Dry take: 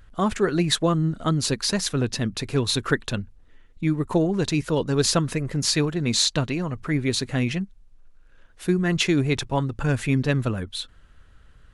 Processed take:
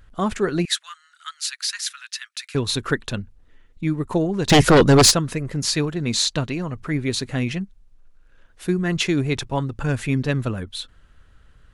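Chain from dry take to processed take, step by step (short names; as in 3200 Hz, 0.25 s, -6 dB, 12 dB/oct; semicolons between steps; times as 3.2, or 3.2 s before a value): 0.65–2.55 steep high-pass 1400 Hz 36 dB/oct; 4.49–5.1 sine folder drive 15 dB -> 8 dB, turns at -7.5 dBFS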